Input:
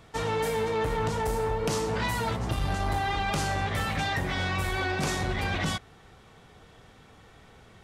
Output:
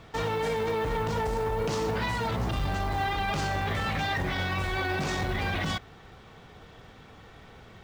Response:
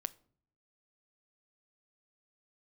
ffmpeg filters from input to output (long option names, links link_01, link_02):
-af "lowpass=5600,alimiter=level_in=0.5dB:limit=-24dB:level=0:latency=1:release=24,volume=-0.5dB,acrusher=bits=7:mode=log:mix=0:aa=0.000001,volume=3.5dB"